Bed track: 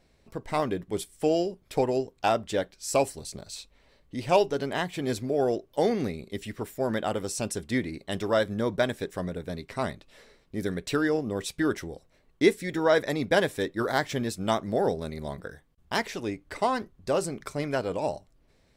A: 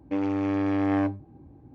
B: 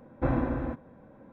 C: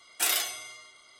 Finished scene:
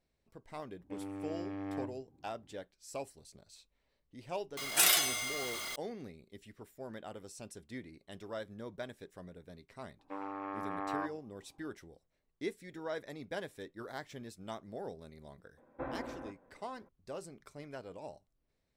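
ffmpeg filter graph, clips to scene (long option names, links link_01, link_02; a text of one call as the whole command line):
ffmpeg -i bed.wav -i cue0.wav -i cue1.wav -i cue2.wav -filter_complex "[1:a]asplit=2[link_01][link_02];[0:a]volume=-17.5dB[link_03];[3:a]aeval=exprs='val(0)+0.5*0.0168*sgn(val(0))':channel_layout=same[link_04];[link_02]bandpass=frequency=1100:width_type=q:width=2.5:csg=0[link_05];[2:a]bass=frequency=250:gain=-14,treble=frequency=4000:gain=-8[link_06];[link_01]atrim=end=1.74,asetpts=PTS-STARTPTS,volume=-16dB,afade=type=in:duration=0.004:curve=hsin,afade=type=out:start_time=1.736:duration=0.004:curve=hsin,adelay=790[link_07];[link_04]atrim=end=1.19,asetpts=PTS-STARTPTS,volume=-0.5dB,afade=type=in:duration=0.004:curve=hsin,afade=type=out:start_time=1.186:duration=0.004:curve=hsin,adelay=201537S[link_08];[link_05]atrim=end=1.74,asetpts=PTS-STARTPTS,volume=-0.5dB,afade=type=in:duration=0.004:curve=hsin,afade=type=out:start_time=1.736:duration=0.004:curve=hsin,adelay=9990[link_09];[link_06]atrim=end=1.32,asetpts=PTS-STARTPTS,volume=-9dB,afade=type=in:duration=0.004:curve=hsin,afade=type=out:start_time=1.316:duration=0.004:curve=hsin,adelay=15570[link_10];[link_03][link_07][link_08][link_09][link_10]amix=inputs=5:normalize=0" out.wav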